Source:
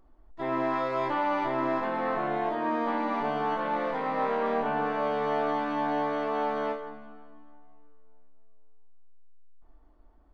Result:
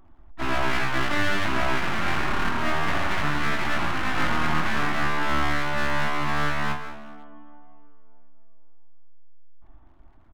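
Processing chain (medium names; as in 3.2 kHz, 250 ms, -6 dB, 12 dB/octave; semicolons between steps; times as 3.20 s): resampled via 8 kHz; full-wave rectifier; peaking EQ 480 Hz -13.5 dB 0.4 oct; trim +8 dB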